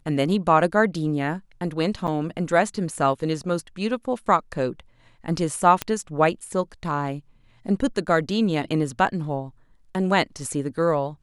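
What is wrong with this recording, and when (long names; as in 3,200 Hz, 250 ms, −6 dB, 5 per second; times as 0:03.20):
0:02.07–0:02.08: drop-out 8.1 ms
0:05.82: click −8 dBFS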